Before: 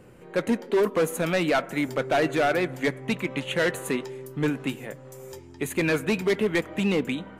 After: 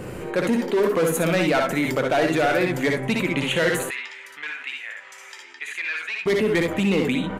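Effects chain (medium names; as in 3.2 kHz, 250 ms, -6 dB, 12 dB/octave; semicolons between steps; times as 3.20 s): 3.83–6.26 s: ladder band-pass 2.4 kHz, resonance 35%; early reflections 60 ms -6 dB, 72 ms -8.5 dB; level flattener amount 50%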